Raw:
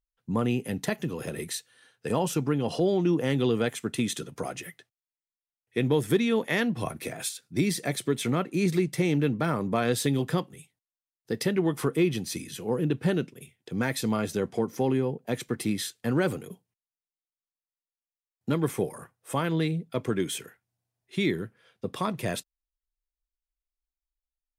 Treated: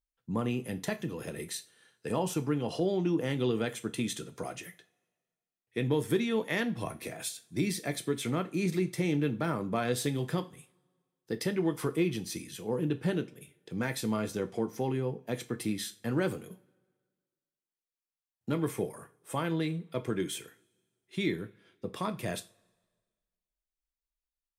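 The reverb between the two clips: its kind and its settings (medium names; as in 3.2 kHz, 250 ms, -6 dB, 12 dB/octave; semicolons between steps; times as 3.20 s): two-slope reverb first 0.29 s, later 1.6 s, from -26 dB, DRR 9 dB; trim -5 dB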